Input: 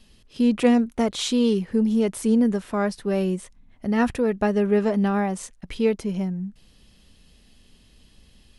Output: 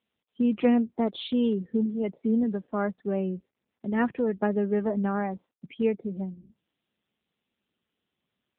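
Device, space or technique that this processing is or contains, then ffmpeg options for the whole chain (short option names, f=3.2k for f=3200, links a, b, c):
mobile call with aggressive noise cancelling: -af "highpass=f=150:w=0.5412,highpass=f=150:w=1.3066,afftdn=nr=27:nf=-36,volume=-3.5dB" -ar 8000 -c:a libopencore_amrnb -b:a 7950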